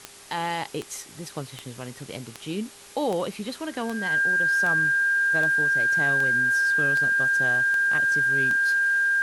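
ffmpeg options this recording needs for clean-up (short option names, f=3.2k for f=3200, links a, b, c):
-af "adeclick=t=4,bandreject=f=402.4:t=h:w=4,bandreject=f=804.8:t=h:w=4,bandreject=f=1.2072k:t=h:w=4,bandreject=f=1.6096k:t=h:w=4,bandreject=f=2.012k:t=h:w=4,bandreject=f=1.6k:w=30,afftdn=nr=26:nf=-45"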